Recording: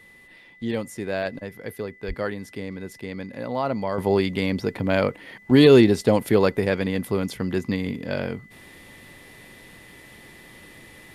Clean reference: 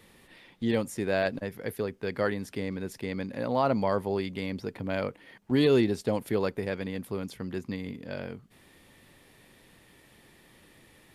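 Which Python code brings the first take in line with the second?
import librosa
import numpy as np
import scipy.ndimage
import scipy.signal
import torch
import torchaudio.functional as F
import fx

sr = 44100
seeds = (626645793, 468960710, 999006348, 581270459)

y = fx.notch(x, sr, hz=2000.0, q=30.0)
y = fx.highpass(y, sr, hz=140.0, slope=24, at=(2.07, 2.19), fade=0.02)
y = fx.fix_level(y, sr, at_s=3.98, step_db=-9.5)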